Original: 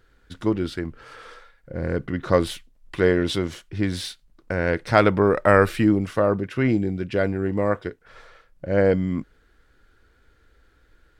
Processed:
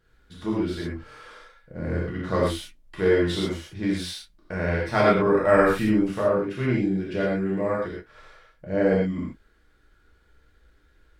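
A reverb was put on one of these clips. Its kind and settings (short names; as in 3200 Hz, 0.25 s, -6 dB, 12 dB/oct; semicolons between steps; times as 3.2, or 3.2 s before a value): non-linear reverb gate 0.15 s flat, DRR -6 dB; gain -9 dB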